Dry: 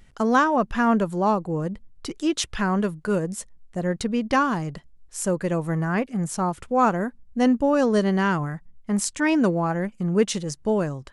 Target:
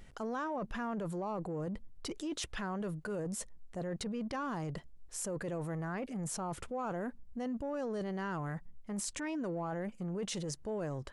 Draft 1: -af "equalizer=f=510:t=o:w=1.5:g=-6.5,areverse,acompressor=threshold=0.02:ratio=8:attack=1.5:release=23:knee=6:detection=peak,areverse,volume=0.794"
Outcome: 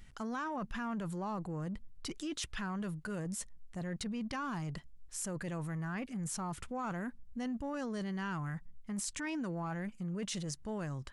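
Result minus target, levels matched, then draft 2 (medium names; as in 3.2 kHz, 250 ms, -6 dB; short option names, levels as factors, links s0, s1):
500 Hz band -5.0 dB
-af "equalizer=f=510:t=o:w=1.5:g=4.5,areverse,acompressor=threshold=0.02:ratio=8:attack=1.5:release=23:knee=6:detection=peak,areverse,volume=0.794"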